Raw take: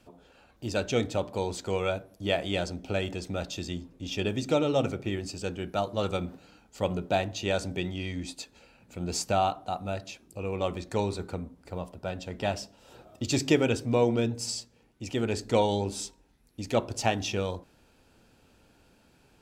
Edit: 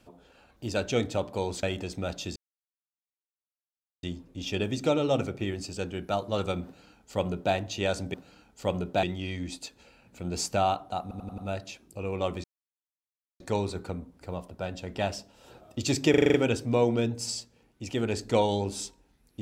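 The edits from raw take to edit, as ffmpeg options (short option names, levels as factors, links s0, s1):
-filter_complex "[0:a]asplit=16[s0][s1][s2][s3][s4][s5][s6][s7][s8][s9][s10][s11][s12][s13][s14][s15];[s0]atrim=end=1.632[s16];[s1]atrim=start=2.948:end=3.68,asetpts=PTS-STARTPTS,afade=t=out:st=0.728:d=0.004:c=hsin,apad=pad_dur=1.67[s17];[s2]atrim=start=3.68:end=7.792,asetpts=PTS-STARTPTS,afade=t=in:d=0.004:c=hsin[s18];[s3]atrim=start=6.298:end=7.192[s19];[s4]atrim=start=7.788:end=9.872[s20];[s5]atrim=start=9.778:end=9.872[s21];[s6]atrim=start=9.778:end=9.872[s22];[s7]atrim=start=9.778:end=9.872[s23];[s8]atrim=start=9.778:end=10.84,asetpts=PTS-STARTPTS,afade=t=out:st=1.058:d=0.004:c=hsin,apad=pad_dur=0.96[s24];[s9]atrim=start=10.84:end=13.582,asetpts=PTS-STARTPTS,afade=t=in:d=0.004:c=hsin[s25];[s10]atrim=start=13.538:end=13.582[s26];[s11]atrim=start=13.538:end=13.582[s27];[s12]atrim=start=13.538:end=13.582[s28];[s13]atrim=start=13.538:end=13.582[s29];[s14]atrim=start=13.538:end=13.582[s30];[s15]atrim=start=13.538[s31];[s17][s18]concat=n=2:v=0:a=1[s32];[s16][s32]acrossfade=d=0.004:c1=hsin:c2=hsin[s33];[s33][s19]acrossfade=d=0.004:c1=hsin:c2=hsin[s34];[s34][s20]acrossfade=d=0.004:c1=hsin:c2=hsin[s35];[s35][s21]acrossfade=d=0.004:c1=hsin:c2=hsin[s36];[s36][s22]acrossfade=d=0.004:c1=hsin:c2=hsin[s37];[s37][s23]acrossfade=d=0.004:c1=hsin:c2=hsin[s38];[s24][s25]concat=n=2:v=0:a=1[s39];[s38][s39]acrossfade=d=0.004:c1=hsin:c2=hsin[s40];[s40][s26]acrossfade=d=0.004:c1=hsin:c2=hsin[s41];[s41][s27]acrossfade=d=0.004:c1=hsin:c2=hsin[s42];[s42][s28]acrossfade=d=0.004:c1=hsin:c2=hsin[s43];[s43][s29]acrossfade=d=0.004:c1=hsin:c2=hsin[s44];[s44][s30]acrossfade=d=0.004:c1=hsin:c2=hsin[s45];[s45][s31]acrossfade=d=0.004:c1=hsin:c2=hsin"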